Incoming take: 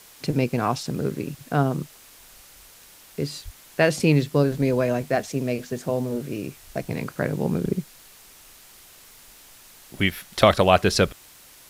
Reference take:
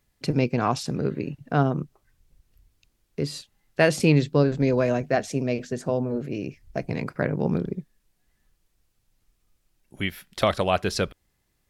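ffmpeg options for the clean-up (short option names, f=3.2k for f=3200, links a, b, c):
-filter_complex "[0:a]asplit=3[a][b][c];[a]afade=t=out:st=3.44:d=0.02[d];[b]highpass=f=140:w=0.5412,highpass=f=140:w=1.3066,afade=t=in:st=3.44:d=0.02,afade=t=out:st=3.56:d=0.02[e];[c]afade=t=in:st=3.56:d=0.02[f];[d][e][f]amix=inputs=3:normalize=0,afwtdn=0.004,asetnsamples=n=441:p=0,asendcmd='7.64 volume volume -6dB',volume=0dB"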